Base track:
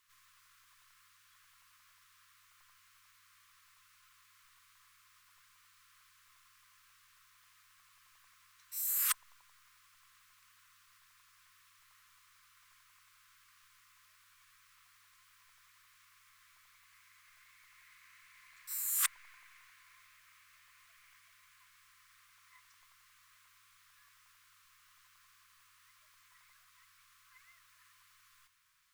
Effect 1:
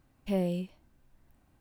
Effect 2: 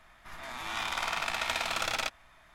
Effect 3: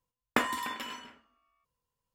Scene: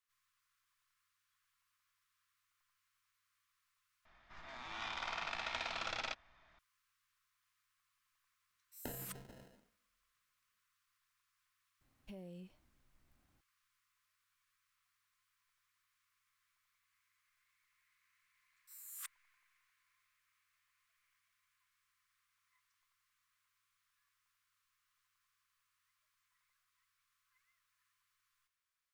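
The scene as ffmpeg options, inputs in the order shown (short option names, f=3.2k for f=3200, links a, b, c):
-filter_complex "[0:a]volume=-17dB[a];[2:a]lowpass=f=5.8k:w=0.5412,lowpass=f=5.8k:w=1.3066[b];[3:a]acrusher=samples=38:mix=1:aa=0.000001[c];[1:a]acompressor=threshold=-37dB:ratio=6:attack=3.2:release=140:knee=1:detection=peak[d];[a]asplit=2[e][f];[e]atrim=end=4.054[g];[b]atrim=end=2.54,asetpts=PTS-STARTPTS,volume=-9.5dB[h];[f]atrim=start=6.586[i];[c]atrim=end=2.14,asetpts=PTS-STARTPTS,volume=-17dB,afade=t=in:d=0.004:c=hsin,afade=t=out:st=2.136:d=0.004:c=hsin,adelay=8490[j];[d]atrim=end=1.6,asetpts=PTS-STARTPTS,volume=-10.5dB,afade=t=in:d=0.004:c=hsin,afade=t=out:st=1.596:d=0.004:c=hsin,adelay=11810[k];[g][h]acrossfade=d=0.004:c1=hsin:c2=hsin[l];[l][i]acrossfade=d=0.004:c1=hsin:c2=hsin[m];[m][j][k]amix=inputs=3:normalize=0"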